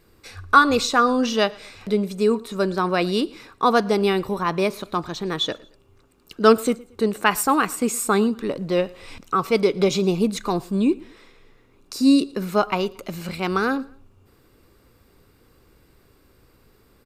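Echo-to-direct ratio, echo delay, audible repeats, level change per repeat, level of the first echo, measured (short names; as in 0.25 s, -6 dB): -23.5 dB, 0.114 s, 2, -8.5 dB, -24.0 dB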